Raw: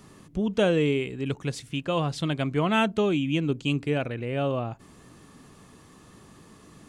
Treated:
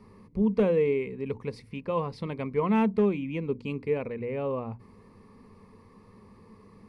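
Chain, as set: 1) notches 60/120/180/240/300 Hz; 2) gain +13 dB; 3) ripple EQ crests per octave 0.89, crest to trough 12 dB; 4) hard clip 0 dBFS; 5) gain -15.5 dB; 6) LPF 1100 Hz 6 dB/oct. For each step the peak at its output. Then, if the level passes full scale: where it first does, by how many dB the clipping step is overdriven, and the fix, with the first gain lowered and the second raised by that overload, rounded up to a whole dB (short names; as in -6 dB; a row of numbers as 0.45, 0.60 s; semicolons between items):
-12.5, +0.5, +5.5, 0.0, -15.5, -15.5 dBFS; step 2, 5.5 dB; step 2 +7 dB, step 5 -9.5 dB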